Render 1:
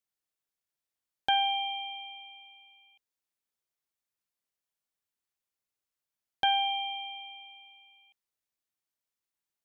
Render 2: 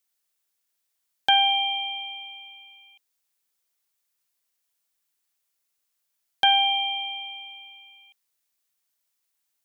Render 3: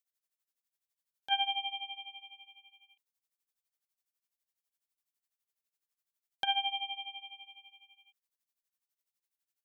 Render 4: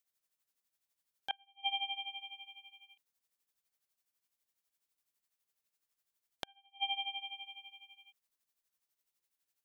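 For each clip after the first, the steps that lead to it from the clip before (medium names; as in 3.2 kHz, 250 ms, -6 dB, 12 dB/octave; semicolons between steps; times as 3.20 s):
tilt EQ +2 dB/octave; trim +6 dB
tremolo 12 Hz, depth 86%; trim -8 dB
inverted gate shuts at -25 dBFS, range -38 dB; trim +3.5 dB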